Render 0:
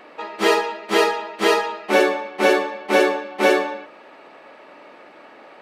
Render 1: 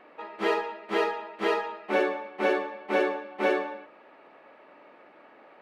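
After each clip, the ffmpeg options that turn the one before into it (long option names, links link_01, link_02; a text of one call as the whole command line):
ffmpeg -i in.wav -af "bass=frequency=250:gain=0,treble=frequency=4000:gain=-14,volume=-8.5dB" out.wav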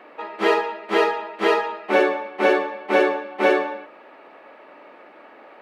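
ffmpeg -i in.wav -af "highpass=200,volume=7.5dB" out.wav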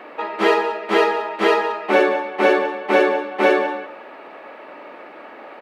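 ffmpeg -i in.wav -filter_complex "[0:a]asplit=2[link_01][link_02];[link_02]acompressor=threshold=-28dB:ratio=6,volume=2dB[link_03];[link_01][link_03]amix=inputs=2:normalize=0,aecho=1:1:184:0.168" out.wav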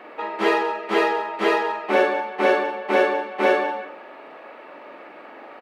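ffmpeg -i in.wav -filter_complex "[0:a]asplit=2[link_01][link_02];[link_02]adelay=42,volume=-5dB[link_03];[link_01][link_03]amix=inputs=2:normalize=0,volume=-4dB" out.wav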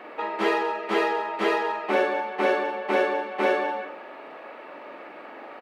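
ffmpeg -i in.wav -af "acompressor=threshold=-26dB:ratio=1.5" out.wav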